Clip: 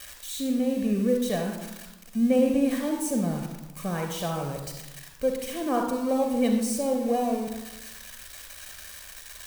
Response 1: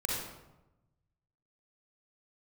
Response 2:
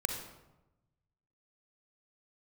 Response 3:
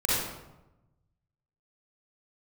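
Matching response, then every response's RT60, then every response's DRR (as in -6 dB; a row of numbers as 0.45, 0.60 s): 2; 1.0, 1.0, 1.0 s; -4.0, 3.5, -8.0 dB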